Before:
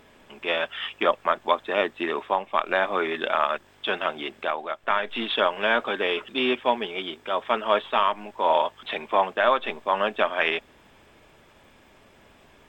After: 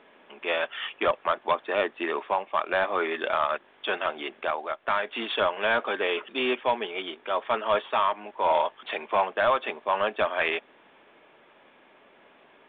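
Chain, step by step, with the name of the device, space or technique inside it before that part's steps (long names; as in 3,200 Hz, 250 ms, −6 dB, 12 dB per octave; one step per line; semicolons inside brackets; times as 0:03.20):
telephone (band-pass filter 300–3,300 Hz; soft clipping −14 dBFS, distortion −15 dB; mu-law 64 kbit/s 8,000 Hz)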